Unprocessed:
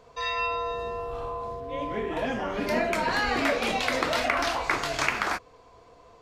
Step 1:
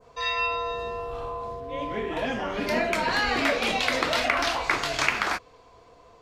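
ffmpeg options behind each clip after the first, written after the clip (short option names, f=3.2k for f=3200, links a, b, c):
-af "adynamicequalizer=threshold=0.00794:dfrequency=3400:dqfactor=0.79:tfrequency=3400:tqfactor=0.79:attack=5:release=100:ratio=0.375:range=2:mode=boostabove:tftype=bell"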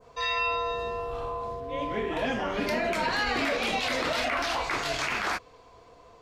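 -af "alimiter=limit=-19dB:level=0:latency=1:release=32"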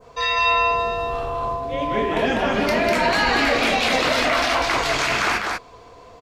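-af "aecho=1:1:198:0.708,volume=7dB"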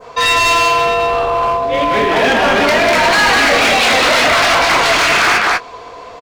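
-filter_complex "[0:a]asplit=2[a][b];[b]highpass=f=720:p=1,volume=13dB,asoftclip=type=tanh:threshold=-7.5dB[c];[a][c]amix=inputs=2:normalize=0,lowpass=f=3.9k:p=1,volume=-6dB,volume=16dB,asoftclip=hard,volume=-16dB,asplit=2[d][e];[e]adelay=21,volume=-13dB[f];[d][f]amix=inputs=2:normalize=0,volume=7dB"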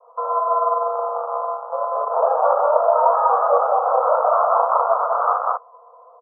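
-af "aeval=exprs='0.447*(cos(1*acos(clip(val(0)/0.447,-1,1)))-cos(1*PI/2))+0.2*(cos(3*acos(clip(val(0)/0.447,-1,1)))-cos(3*PI/2))+0.0112*(cos(5*acos(clip(val(0)/0.447,-1,1)))-cos(5*PI/2))':c=same,asuperpass=centerf=790:order=20:qfactor=0.93"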